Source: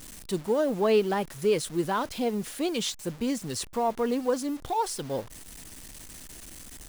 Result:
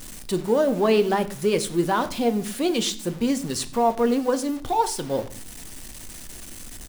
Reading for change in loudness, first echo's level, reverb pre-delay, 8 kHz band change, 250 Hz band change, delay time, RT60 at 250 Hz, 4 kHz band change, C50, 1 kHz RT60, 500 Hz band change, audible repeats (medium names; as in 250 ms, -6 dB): +5.0 dB, -21.5 dB, 3 ms, +5.0 dB, +6.0 dB, 95 ms, 0.80 s, +5.0 dB, 15.5 dB, 0.45 s, +4.5 dB, 1